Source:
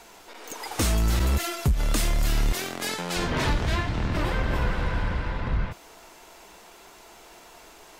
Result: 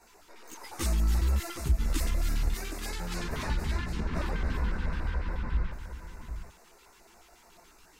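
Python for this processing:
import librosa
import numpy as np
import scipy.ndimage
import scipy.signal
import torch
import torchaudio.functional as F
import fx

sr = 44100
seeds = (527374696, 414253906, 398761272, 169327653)

y = fx.chorus_voices(x, sr, voices=6, hz=1.0, base_ms=15, depth_ms=3.0, mix_pct=60)
y = y + 10.0 ** (-9.0 / 20.0) * np.pad(y, (int(764 * sr / 1000.0), 0))[:len(y)]
y = fx.filter_lfo_notch(y, sr, shape='square', hz=7.0, low_hz=620.0, high_hz=3200.0, q=1.1)
y = y * librosa.db_to_amplitude(-5.0)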